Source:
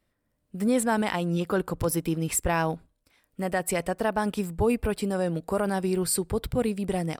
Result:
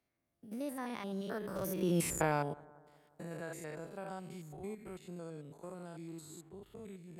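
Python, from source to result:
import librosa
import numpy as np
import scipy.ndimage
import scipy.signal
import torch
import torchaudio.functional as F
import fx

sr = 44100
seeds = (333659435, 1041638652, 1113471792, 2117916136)

y = fx.spec_steps(x, sr, hold_ms=100)
y = fx.doppler_pass(y, sr, speed_mps=42, closest_m=7.0, pass_at_s=2.05)
y = fx.highpass(y, sr, hz=110.0, slope=6)
y = fx.echo_bbd(y, sr, ms=180, stages=2048, feedback_pct=42, wet_db=-24.0)
y = fx.band_squash(y, sr, depth_pct=40)
y = y * librosa.db_to_amplitude(4.0)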